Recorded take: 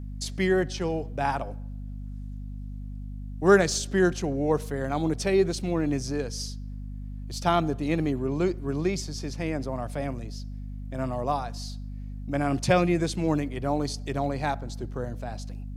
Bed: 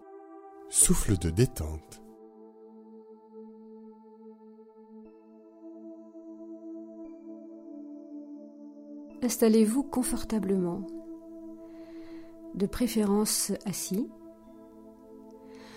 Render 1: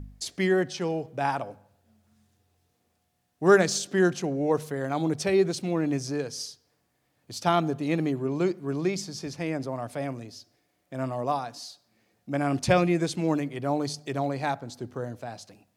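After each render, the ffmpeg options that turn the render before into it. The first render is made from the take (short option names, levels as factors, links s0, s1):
-af "bandreject=f=50:t=h:w=4,bandreject=f=100:t=h:w=4,bandreject=f=150:t=h:w=4,bandreject=f=200:t=h:w=4,bandreject=f=250:t=h:w=4"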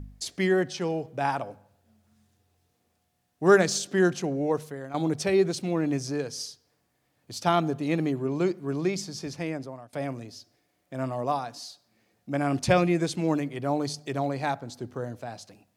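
-filter_complex "[0:a]asplit=3[s0][s1][s2];[s0]atrim=end=4.94,asetpts=PTS-STARTPTS,afade=t=out:st=4.37:d=0.57:silence=0.266073[s3];[s1]atrim=start=4.94:end=9.93,asetpts=PTS-STARTPTS,afade=t=in:d=0.004:c=hsin:silence=0.266073,afade=t=out:st=4.45:d=0.54:silence=0.0707946[s4];[s2]atrim=start=9.93,asetpts=PTS-STARTPTS,afade=t=in:d=0.004:c=hsin:silence=0.0707946[s5];[s3][s4][s5]concat=n=3:v=0:a=1"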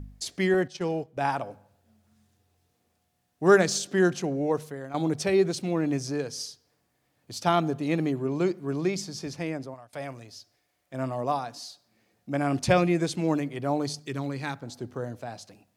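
-filter_complex "[0:a]asettb=1/sr,asplit=3[s0][s1][s2];[s0]atrim=end=0.544[s3];[s1]atrim=start=0.54:end=1.17,asetpts=PTS-STARTPTS,afade=t=in:d=0.004:c=qsin,afade=t=out:st=0.626:d=0.004:c=qsin,agate=range=0.316:threshold=0.0158:ratio=16:release=100:detection=peak[s4];[s2]atrim=start=1.166[s5];[s3][s4]acrossfade=d=0.004:c1=hsin:c2=qsin[s6];[s6][s5]acrossfade=d=0.004:c1=qsin:c2=hsin,asettb=1/sr,asplit=3[s7][s8][s9];[s7]atrim=end=9.744[s10];[s8]atrim=start=9.74:end=10.94,asetpts=PTS-STARTPTS,afade=t=in:d=0.004:c=qsin,afade=t=out:st=1.196:d=0.004:c=qsin,equalizer=f=240:w=0.64:g=-9[s11];[s9]atrim=start=10.936[s12];[s10][s11]acrossfade=d=0.004:c1=hsin:c2=qsin[s13];[s13][s12]acrossfade=d=0.004:c1=qsin:c2=hsin,asettb=1/sr,asplit=3[s14][s15][s16];[s14]atrim=end=13.994[s17];[s15]atrim=start=13.99:end=14.63,asetpts=PTS-STARTPTS,afade=t=in:d=0.004:c=qsin,afade=t=out:st=0.636:d=0.004:c=qsin,equalizer=f=680:t=o:w=0.73:g=-13.5[s18];[s16]atrim=start=14.626[s19];[s17][s18]acrossfade=d=0.004:c1=hsin:c2=qsin[s20];[s20][s19]acrossfade=d=0.004:c1=qsin:c2=hsin"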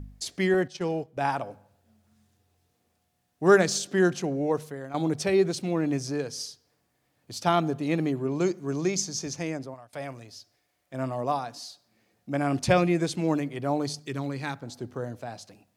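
-filter_complex "[0:a]asettb=1/sr,asplit=3[s0][s1][s2];[s0]atrim=end=8.404[s3];[s1]atrim=start=8.4:end=9.59,asetpts=PTS-STARTPTS,afade=t=in:d=0.004:c=qsin,afade=t=out:st=1.186:d=0.004:c=qsin,equalizer=f=6400:t=o:w=0.4:g=12.5[s4];[s2]atrim=start=9.586[s5];[s3][s4]acrossfade=d=0.004:c1=hsin:c2=qsin[s6];[s6][s5]acrossfade=d=0.004:c1=qsin:c2=hsin"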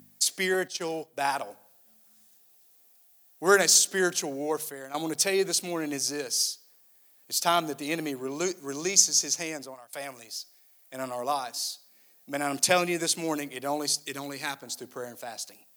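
-af "highpass=150,aemphasis=mode=production:type=riaa"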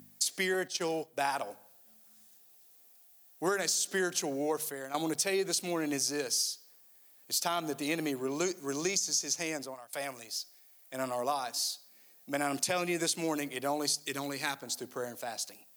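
-af "alimiter=limit=0.211:level=0:latency=1:release=98,acompressor=threshold=0.0447:ratio=6"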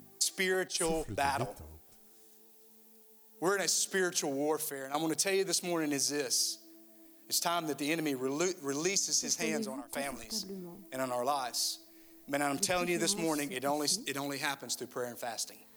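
-filter_complex "[1:a]volume=0.158[s0];[0:a][s0]amix=inputs=2:normalize=0"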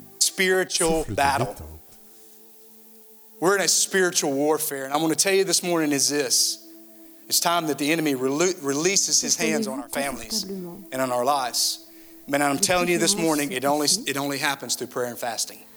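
-af "volume=3.35"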